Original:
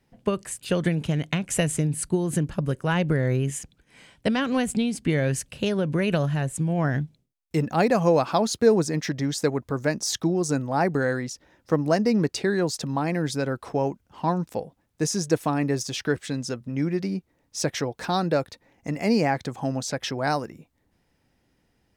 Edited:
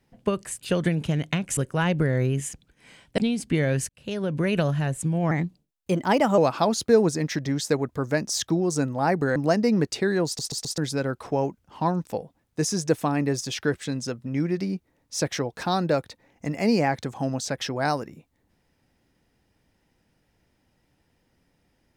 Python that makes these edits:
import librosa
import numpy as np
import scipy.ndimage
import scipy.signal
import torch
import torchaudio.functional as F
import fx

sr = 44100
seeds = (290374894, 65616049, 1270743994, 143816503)

y = fx.edit(x, sr, fx.cut(start_s=1.57, length_s=1.1),
    fx.cut(start_s=4.28, length_s=0.45),
    fx.fade_in_span(start_s=5.44, length_s=0.68, curve='qsin'),
    fx.speed_span(start_s=6.86, length_s=1.25, speed=1.17),
    fx.cut(start_s=11.09, length_s=0.69),
    fx.stutter_over(start_s=12.68, slice_s=0.13, count=4), tone=tone)